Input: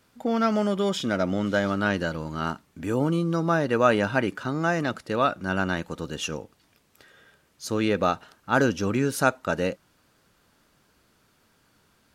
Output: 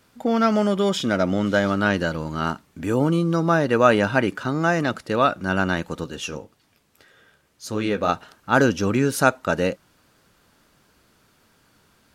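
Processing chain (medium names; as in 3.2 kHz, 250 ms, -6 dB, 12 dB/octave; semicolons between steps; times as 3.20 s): 6.04–8.09 s: flange 1.8 Hz, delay 7 ms, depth 8.5 ms, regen -43%; trim +4 dB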